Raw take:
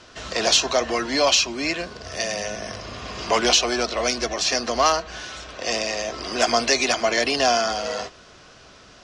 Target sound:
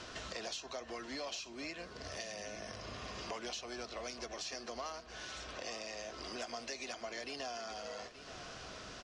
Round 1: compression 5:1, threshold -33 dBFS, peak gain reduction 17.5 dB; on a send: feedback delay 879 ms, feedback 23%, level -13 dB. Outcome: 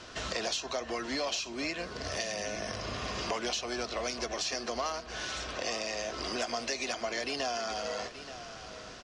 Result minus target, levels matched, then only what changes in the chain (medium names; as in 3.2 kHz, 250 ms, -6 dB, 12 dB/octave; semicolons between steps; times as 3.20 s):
compression: peak gain reduction -9 dB
change: compression 5:1, threshold -44.5 dBFS, peak gain reduction 27 dB